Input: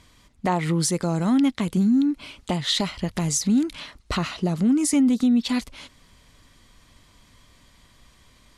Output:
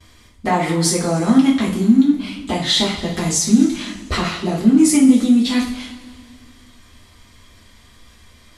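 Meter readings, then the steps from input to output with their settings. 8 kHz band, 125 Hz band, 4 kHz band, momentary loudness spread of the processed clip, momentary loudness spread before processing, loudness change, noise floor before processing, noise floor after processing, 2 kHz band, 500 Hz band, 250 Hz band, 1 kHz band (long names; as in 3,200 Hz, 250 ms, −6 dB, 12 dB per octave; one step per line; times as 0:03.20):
+6.5 dB, +3.0 dB, +7.0 dB, 12 LU, 10 LU, +6.5 dB, −57 dBFS, −48 dBFS, +7.5 dB, +7.0 dB, +7.0 dB, +6.5 dB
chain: coupled-rooms reverb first 0.41 s, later 2.2 s, from −18 dB, DRR −6 dB
noise gate with hold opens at −42 dBFS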